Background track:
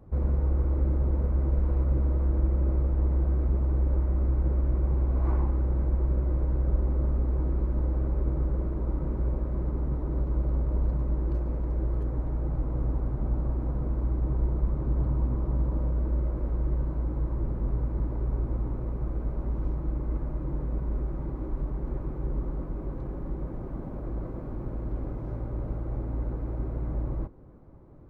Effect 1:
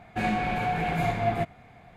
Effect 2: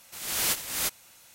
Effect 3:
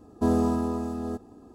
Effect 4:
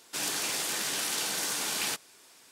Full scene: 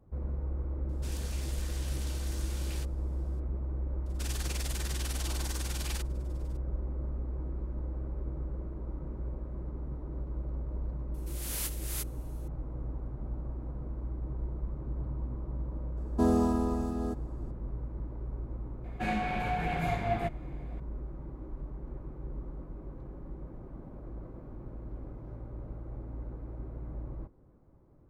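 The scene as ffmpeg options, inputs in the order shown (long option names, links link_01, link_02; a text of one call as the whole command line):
ffmpeg -i bed.wav -i cue0.wav -i cue1.wav -i cue2.wav -i cue3.wav -filter_complex "[4:a]asplit=2[link_01][link_02];[0:a]volume=-9.5dB[link_03];[link_02]tremolo=f=20:d=0.75[link_04];[2:a]equalizer=frequency=11000:width_type=o:width=0.68:gain=7.5[link_05];[link_01]atrim=end=2.51,asetpts=PTS-STARTPTS,volume=-15.5dB,afade=type=in:duration=0.004:curve=hsin,afade=type=out:start_time=2.506:duration=0.004:curve=hsin,adelay=890[link_06];[link_04]atrim=end=2.51,asetpts=PTS-STARTPTS,volume=-6dB,afade=type=in:duration=0.004:curve=hsin,afade=type=out:start_time=2.506:duration=0.004:curve=hsin,adelay=4060[link_07];[link_05]atrim=end=1.34,asetpts=PTS-STARTPTS,volume=-13dB,afade=type=in:duration=0.004:curve=hsin,afade=type=out:start_time=1.336:duration=0.004:curve=hsin,adelay=491274S[link_08];[3:a]atrim=end=1.54,asetpts=PTS-STARTPTS,volume=-2.5dB,afade=type=in:duration=0.004:curve=hsin,afade=type=out:start_time=1.536:duration=0.004:curve=hsin,adelay=15970[link_09];[1:a]atrim=end=1.96,asetpts=PTS-STARTPTS,volume=-5dB,afade=type=in:duration=0.004:curve=hsin,afade=type=out:start_time=1.956:duration=0.004:curve=hsin,adelay=18840[link_10];[link_03][link_06][link_07][link_08][link_09][link_10]amix=inputs=6:normalize=0" out.wav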